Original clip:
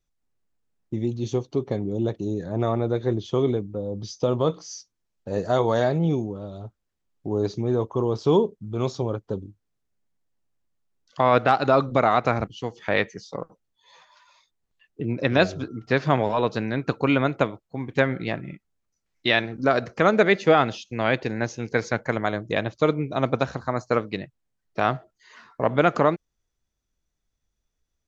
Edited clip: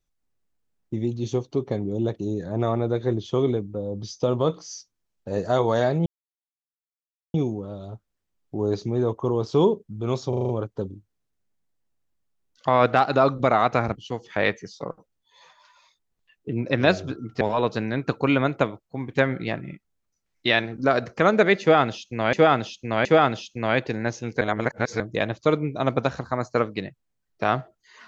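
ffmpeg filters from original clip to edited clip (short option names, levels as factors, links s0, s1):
-filter_complex "[0:a]asplit=12[s0][s1][s2][s3][s4][s5][s6][s7][s8][s9][s10][s11];[s0]atrim=end=6.06,asetpts=PTS-STARTPTS,afade=t=out:st=6.056:d=0.004:c=hsin,apad=pad_dur=1.28[s12];[s1]atrim=start=6.06:end=9.052,asetpts=PTS-STARTPTS,afade=t=in:d=0.004:c=hsin[s13];[s2]atrim=start=9.008:end=9.052[s14];[s3]atrim=start=9.008:end=9.052[s15];[s4]atrim=start=9.008:end=9.052[s16];[s5]atrim=start=9.008:end=9.052[s17];[s6]atrim=start=9.008:end=15.932[s18];[s7]atrim=start=16.208:end=21.132[s19];[s8]atrim=start=20.408:end=21.132[s20];[s9]atrim=start=20.408:end=21.772[s21];[s10]atrim=start=21.768:end=22.362,asetpts=PTS-STARTPTS,areverse[s22];[s11]atrim=start=22.358[s23];[s12][s13]concat=n=2:v=0:a=1[s24];[s24][s14]acrossfade=d=0.004:c1=hsin:c2=hsin[s25];[s25][s15]acrossfade=d=0.004:c1=hsin:c2=hsin[s26];[s26][s16]acrossfade=d=0.004:c1=hsin:c2=hsin[s27];[s27][s17]acrossfade=d=0.004:c1=hsin:c2=hsin[s28];[s28][s18]acrossfade=d=0.004:c1=hsin:c2=hsin[s29];[s29][s19]acrossfade=d=0.004:c1=hsin:c2=hsin[s30];[s30][s20]acrossfade=d=0.004:c1=hsin:c2=hsin[s31];[s31][s21]acrossfade=d=0.004:c1=hsin:c2=hsin[s32];[s32][s22]acrossfade=d=0.004:c1=hsin:c2=hsin[s33];[s33][s23]acrossfade=d=0.004:c1=hsin:c2=hsin"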